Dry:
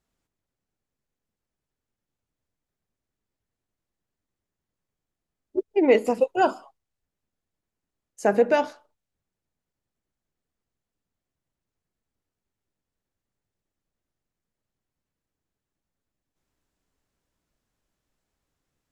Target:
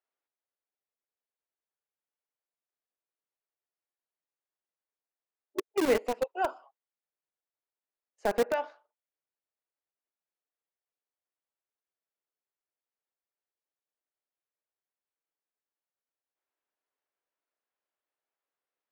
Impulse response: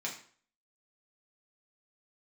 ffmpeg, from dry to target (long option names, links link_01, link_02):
-filter_complex "[0:a]acrossover=split=390[link_01][link_02];[link_01]acrusher=bits=3:mix=0:aa=0.000001[link_03];[link_02]lowpass=2800[link_04];[link_03][link_04]amix=inputs=2:normalize=0,volume=-8dB"